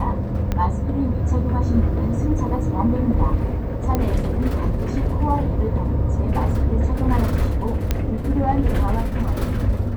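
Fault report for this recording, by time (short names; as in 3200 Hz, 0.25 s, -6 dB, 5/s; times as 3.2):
0.52 pop -10 dBFS
3.95 pop -8 dBFS
7.91 pop -6 dBFS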